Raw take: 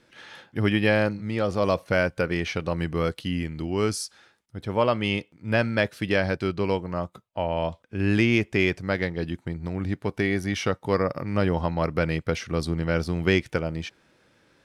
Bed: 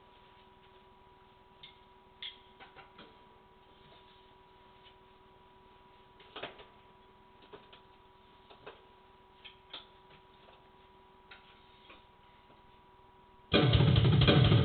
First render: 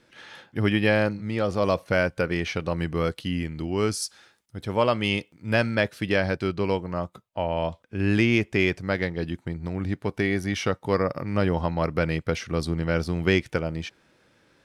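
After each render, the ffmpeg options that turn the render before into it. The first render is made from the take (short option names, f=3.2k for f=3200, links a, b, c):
-filter_complex "[0:a]asettb=1/sr,asplit=3[a][b][c];[a]atrim=end=4.024[d];[b]atrim=start=4.02:end=5.75,asetpts=PTS-STARTPTS,afade=t=in:d=0.004:c=qsin,afade=t=out:st=1.726:d=0.004:c=qsin,highshelf=f=4.3k:g=6.5[e];[c]atrim=start=5.746[f];[d][e]acrossfade=d=0.004:c1=hsin:c2=qsin[g];[g][f]acrossfade=d=0.004:c1=qsin:c2=hsin"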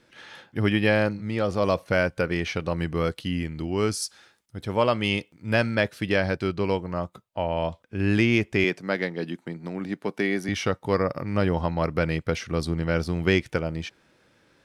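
-filter_complex "[0:a]asettb=1/sr,asplit=3[a][b][c];[a]atrim=end=8.644[d];[b]atrim=start=8.64:end=10.49,asetpts=PTS-STARTPTS,afade=t=in:d=0.004:c=qsin,afade=t=out:st=1.846:d=0.004:c=qsin,highpass=f=170:w=0.5412,highpass=f=170:w=1.3066[e];[c]atrim=start=10.486[f];[d][e]acrossfade=d=0.004:c1=hsin:c2=qsin[g];[g][f]acrossfade=d=0.004:c1=qsin:c2=hsin"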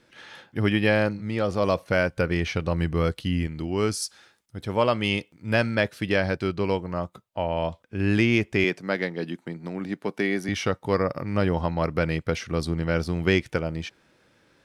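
-filter_complex "[0:a]asettb=1/sr,asplit=3[a][b][c];[a]atrim=end=2.144[d];[b]atrim=start=2.14:end=3.47,asetpts=PTS-STARTPTS,afade=t=in:d=0.004:c=qsin,afade=t=out:st=1.326:d=0.004:c=qsin,lowshelf=f=84:g=11.5[e];[c]atrim=start=3.466[f];[d][e]acrossfade=d=0.004:c1=hsin:c2=qsin[g];[g][f]acrossfade=d=0.004:c1=qsin:c2=hsin"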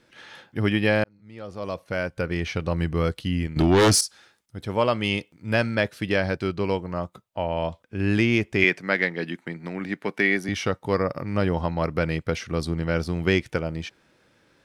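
-filter_complex "[0:a]asettb=1/sr,asplit=3[a][b][c];[a]atrim=end=3.564[d];[b]atrim=start=3.56:end=4.01,asetpts=PTS-STARTPTS,afade=t=in:d=0.004:c=qsin,afade=t=out:st=0.446:d=0.004:c=qsin,aeval=exprs='0.237*sin(PI/2*3.16*val(0)/0.237)':c=same[e];[c]atrim=start=4.006[f];[d][e]acrossfade=d=0.004:c1=hsin:c2=qsin[g];[g][f]acrossfade=d=0.004:c1=qsin:c2=hsin,asettb=1/sr,asplit=3[h][i][j];[h]atrim=end=8.624[k];[i]atrim=start=8.62:end=10.37,asetpts=PTS-STARTPTS,afade=t=in:d=0.004:c=qsin,afade=t=out:st=1.746:d=0.004:c=qsin,equalizer=f=2k:t=o:w=1.1:g=8.5[l];[j]atrim=start=10.366[m];[k][l]acrossfade=d=0.004:c1=hsin:c2=qsin[n];[n][m]acrossfade=d=0.004:c1=qsin:c2=hsin,asplit=2[o][p];[o]atrim=end=1.04,asetpts=PTS-STARTPTS,afade=t=out:st=1.036:d=0.004:c=hsin[q];[p]atrim=start=1.04,asetpts=PTS-STARTPTS,afade=t=in:d=1.67[r];[q][r]concat=n=2:v=0:a=1"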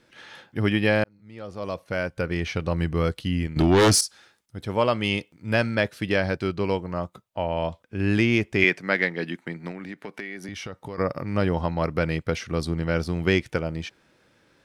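-filter_complex "[0:a]asettb=1/sr,asplit=3[a][b][c];[a]atrim=end=9.714[d];[b]atrim=start=9.71:end=10.98,asetpts=PTS-STARTPTS,afade=t=in:d=0.004:c=qsin,afade=t=out:st=1.266:d=0.004:c=qsin,acompressor=threshold=-32dB:ratio=6:attack=3.2:release=140:knee=1:detection=peak[e];[c]atrim=start=10.976[f];[d][e]acrossfade=d=0.004:c1=hsin:c2=qsin[g];[g][f]acrossfade=d=0.004:c1=qsin:c2=hsin"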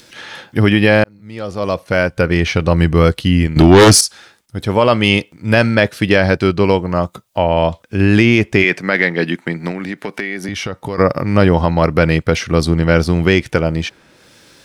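-filter_complex "[0:a]acrossover=split=3600[a][b];[b]acompressor=mode=upward:threshold=-51dB:ratio=2.5[c];[a][c]amix=inputs=2:normalize=0,alimiter=level_in=12.5dB:limit=-1dB:release=50:level=0:latency=1"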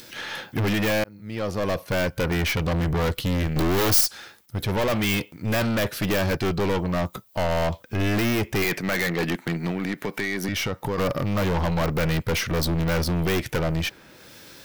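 -af "aeval=exprs='(tanh(11.2*val(0)+0.25)-tanh(0.25))/11.2':c=same,aexciter=amount=4.7:drive=2.7:freq=12k"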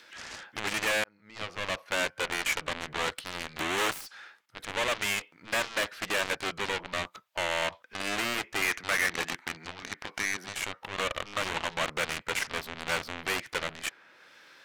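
-af "bandpass=f=1.6k:t=q:w=0.99:csg=0,aeval=exprs='0.126*(cos(1*acos(clip(val(0)/0.126,-1,1)))-cos(1*PI/2))+0.0316*(cos(7*acos(clip(val(0)/0.126,-1,1)))-cos(7*PI/2))':c=same"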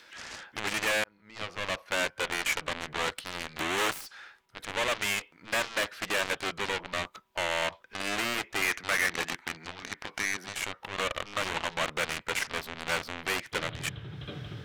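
-filter_complex "[1:a]volume=-16.5dB[a];[0:a][a]amix=inputs=2:normalize=0"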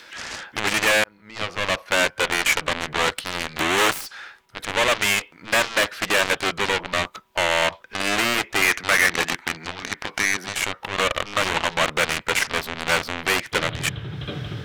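-af "volume=9.5dB"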